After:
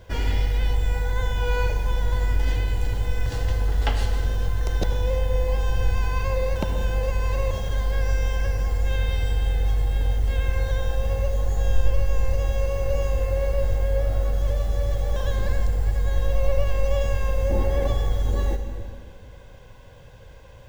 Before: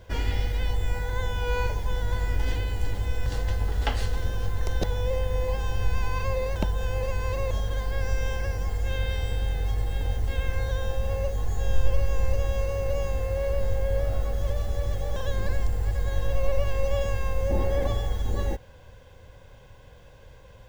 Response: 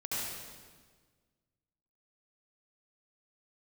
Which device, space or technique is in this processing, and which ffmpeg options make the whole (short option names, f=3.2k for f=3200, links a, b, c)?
compressed reverb return: -filter_complex "[0:a]asplit=2[a][b];[1:a]atrim=start_sample=2205[c];[b][c]afir=irnorm=-1:irlink=0,acompressor=threshold=-17dB:ratio=6,volume=-7dB[d];[a][d]amix=inputs=2:normalize=0"